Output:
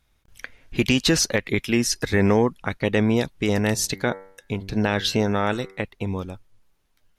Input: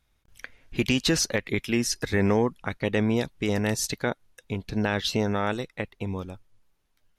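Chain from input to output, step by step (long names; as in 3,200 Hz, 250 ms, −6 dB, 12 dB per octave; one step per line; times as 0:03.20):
0:03.73–0:05.82: hum removal 96.3 Hz, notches 23
level +4 dB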